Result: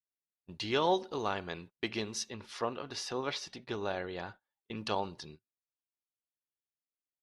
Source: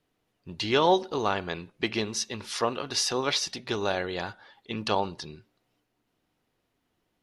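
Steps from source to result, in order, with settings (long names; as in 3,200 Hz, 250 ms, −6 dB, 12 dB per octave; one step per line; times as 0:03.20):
noise gate −42 dBFS, range −30 dB
0:02.30–0:04.75: high-shelf EQ 4,200 Hz −10.5 dB
level −7 dB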